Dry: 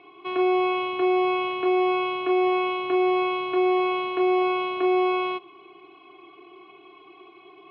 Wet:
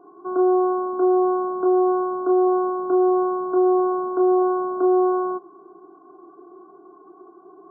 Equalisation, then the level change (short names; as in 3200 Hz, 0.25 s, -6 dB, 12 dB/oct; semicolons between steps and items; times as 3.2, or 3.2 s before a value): brick-wall FIR band-pass 150–1600 Hz; low shelf 450 Hz +7 dB; 0.0 dB